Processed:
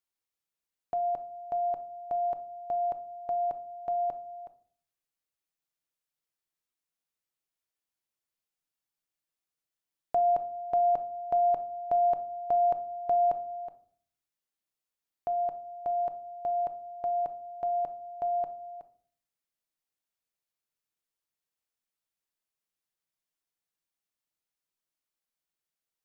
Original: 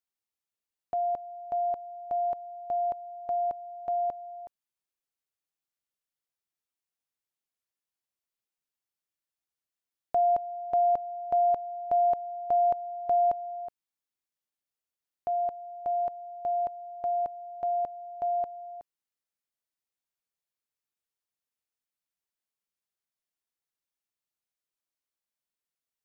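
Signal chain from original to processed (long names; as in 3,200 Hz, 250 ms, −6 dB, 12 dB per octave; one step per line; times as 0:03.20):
rectangular room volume 540 cubic metres, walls furnished, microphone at 0.59 metres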